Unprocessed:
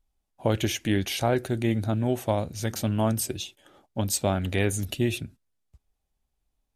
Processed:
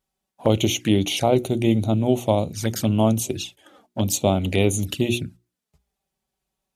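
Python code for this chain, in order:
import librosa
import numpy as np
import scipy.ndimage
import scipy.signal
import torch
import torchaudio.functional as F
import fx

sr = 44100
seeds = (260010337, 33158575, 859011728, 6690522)

y = scipy.signal.sosfilt(scipy.signal.butter(2, 99.0, 'highpass', fs=sr, output='sos'), x)
y = fx.hum_notches(y, sr, base_hz=60, count=6)
y = fx.env_flanger(y, sr, rest_ms=5.3, full_db=-25.5)
y = F.gain(torch.from_numpy(y), 7.5).numpy()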